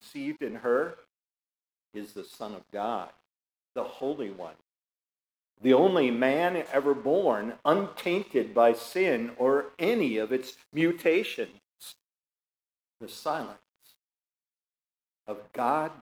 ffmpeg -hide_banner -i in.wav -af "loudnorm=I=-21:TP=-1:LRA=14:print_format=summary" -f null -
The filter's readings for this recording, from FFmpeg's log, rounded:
Input Integrated:    -28.0 LUFS
Input True Peak:      -9.1 dBTP
Input LRA:            11.3 LU
Input Threshold:     -39.4 LUFS